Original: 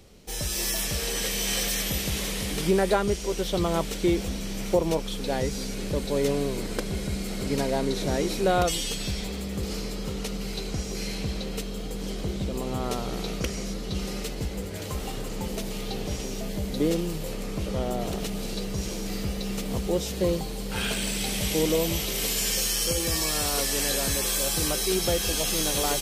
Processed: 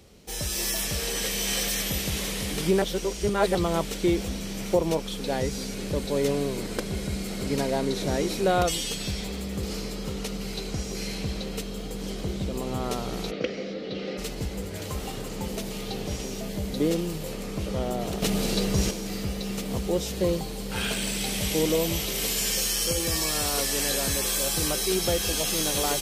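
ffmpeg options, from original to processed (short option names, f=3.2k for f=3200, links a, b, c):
-filter_complex "[0:a]asplit=3[a][b][c];[a]afade=t=out:st=13.3:d=0.02[d];[b]highpass=210,equalizer=f=290:t=q:w=4:g=5,equalizer=f=510:t=q:w=4:g=9,equalizer=f=990:t=q:w=4:g=-9,equalizer=f=2k:t=q:w=4:g=3,lowpass=f=4.2k:w=0.5412,lowpass=f=4.2k:w=1.3066,afade=t=in:st=13.3:d=0.02,afade=t=out:st=14.17:d=0.02[e];[c]afade=t=in:st=14.17:d=0.02[f];[d][e][f]amix=inputs=3:normalize=0,asettb=1/sr,asplit=3[g][h][i];[g]atrim=end=18.224[j];[h]atrim=start=18.22:end=18.91,asetpts=PTS-STARTPTS,afade=t=in:d=0.004:c=qsin,afade=t=out:st=0.686:d=0.004:c=qsin,acontrast=77[k];[i]atrim=start=18.906[l];[j][k]acrossfade=d=0.004:c1=hsin:c2=qsin[m];[m][l]acrossfade=d=0.004:c1=qsin:c2=hsin,asplit=3[n][o][p];[n]atrim=end=2.822[q];[o]atrim=start=2.818:end=3.552,asetpts=PTS-STARTPTS,areverse[r];[p]atrim=start=3.548[s];[q][r]acrossfade=d=0.004:c1=hsin:c2=hsin[t];[t][s]acrossfade=d=0.004:c1=hsin:c2=hsin,highpass=40"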